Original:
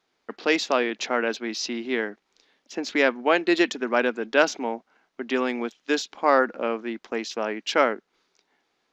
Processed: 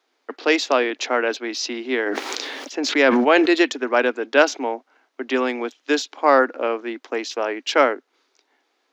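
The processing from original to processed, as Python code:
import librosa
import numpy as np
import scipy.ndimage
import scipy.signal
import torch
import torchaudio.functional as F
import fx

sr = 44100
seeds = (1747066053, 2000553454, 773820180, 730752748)

y = scipy.signal.sosfilt(scipy.signal.ellip(4, 1.0, 40, 260.0, 'highpass', fs=sr, output='sos'), x)
y = fx.sustainer(y, sr, db_per_s=22.0, at=(2.05, 3.48), fade=0.02)
y = y * librosa.db_to_amplitude(4.5)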